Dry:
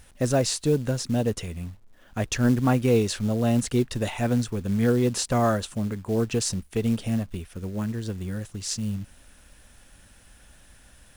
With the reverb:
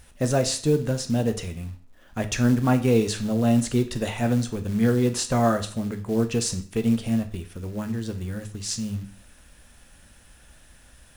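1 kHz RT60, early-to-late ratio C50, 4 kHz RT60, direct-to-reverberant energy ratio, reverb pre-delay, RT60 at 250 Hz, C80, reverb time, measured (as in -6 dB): 0.45 s, 13.5 dB, 0.40 s, 7.0 dB, 10 ms, 0.45 s, 18.0 dB, 0.45 s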